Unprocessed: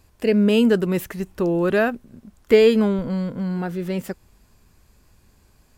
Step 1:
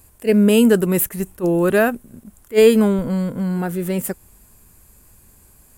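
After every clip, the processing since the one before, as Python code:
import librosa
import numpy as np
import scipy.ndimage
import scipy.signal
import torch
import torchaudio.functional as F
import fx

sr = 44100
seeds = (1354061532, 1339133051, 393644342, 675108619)

y = fx.high_shelf_res(x, sr, hz=6900.0, db=11.5, q=1.5)
y = fx.attack_slew(y, sr, db_per_s=380.0)
y = y * librosa.db_to_amplitude(3.5)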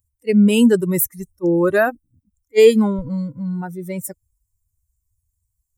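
y = fx.bin_expand(x, sr, power=2.0)
y = y * librosa.db_to_amplitude(3.0)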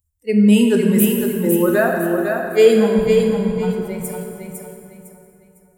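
y = fx.echo_feedback(x, sr, ms=505, feedback_pct=31, wet_db=-5)
y = fx.rev_plate(y, sr, seeds[0], rt60_s=2.7, hf_ratio=0.6, predelay_ms=0, drr_db=1.5)
y = y * librosa.db_to_amplitude(-2.0)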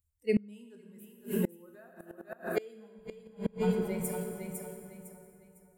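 y = fx.gate_flip(x, sr, shuts_db=-9.0, range_db=-30)
y = y * librosa.db_to_amplitude(-8.0)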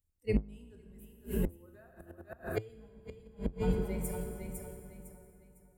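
y = fx.octave_divider(x, sr, octaves=2, level_db=2.0)
y = y * librosa.db_to_amplitude(-4.0)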